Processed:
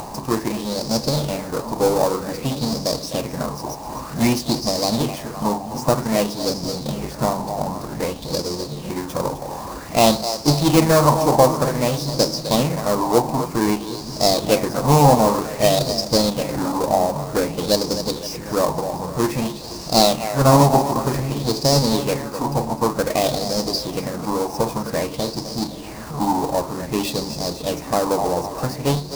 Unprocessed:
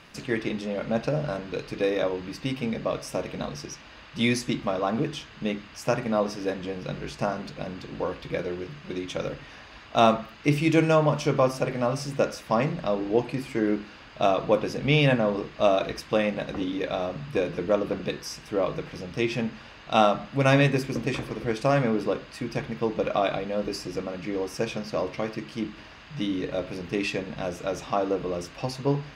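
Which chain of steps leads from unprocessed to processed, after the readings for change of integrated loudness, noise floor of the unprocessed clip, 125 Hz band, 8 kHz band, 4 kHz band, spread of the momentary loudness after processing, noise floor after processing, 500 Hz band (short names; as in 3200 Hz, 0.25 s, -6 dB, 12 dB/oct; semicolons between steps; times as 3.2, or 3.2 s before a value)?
+7.0 dB, -47 dBFS, +7.5 dB, +16.0 dB, +11.0 dB, 11 LU, -33 dBFS, +5.5 dB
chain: half-waves squared off; band shelf 2100 Hz -13 dB; upward compressor, threshold -28 dBFS; on a send: split-band echo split 320 Hz, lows 0.751 s, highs 0.256 s, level -10.5 dB; on the sum: LFO bell 0.53 Hz 820–5100 Hz +14 dB; gain +1 dB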